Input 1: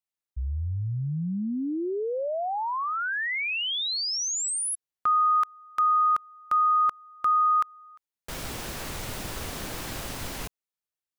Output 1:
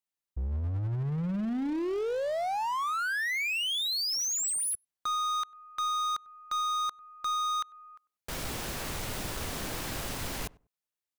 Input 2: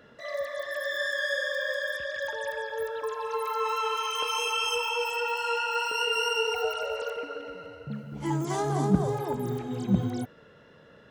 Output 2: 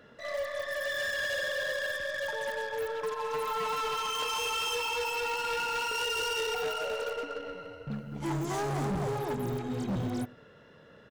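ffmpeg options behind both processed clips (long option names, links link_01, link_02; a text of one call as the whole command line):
ffmpeg -i in.wav -filter_complex "[0:a]volume=29dB,asoftclip=hard,volume=-29dB,asplit=2[link_01][link_02];[link_02]adelay=97,lowpass=frequency=960:poles=1,volume=-20.5dB,asplit=2[link_03][link_04];[link_04]adelay=97,lowpass=frequency=960:poles=1,volume=0.21[link_05];[link_01][link_03][link_05]amix=inputs=3:normalize=0,aeval=exprs='0.0398*(cos(1*acos(clip(val(0)/0.0398,-1,1)))-cos(1*PI/2))+0.00158*(cos(3*acos(clip(val(0)/0.0398,-1,1)))-cos(3*PI/2))+0.00316*(cos(6*acos(clip(val(0)/0.0398,-1,1)))-cos(6*PI/2))+0.00141*(cos(8*acos(clip(val(0)/0.0398,-1,1)))-cos(8*PI/2))':channel_layout=same" out.wav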